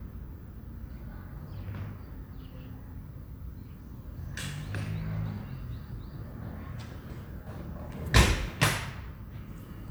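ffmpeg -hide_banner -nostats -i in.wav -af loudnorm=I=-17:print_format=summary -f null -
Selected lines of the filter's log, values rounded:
Input Integrated:    -31.6 LUFS
Input True Peak:      -5.5 dBTP
Input LRA:            12.7 LU
Input Threshold:     -43.5 LUFS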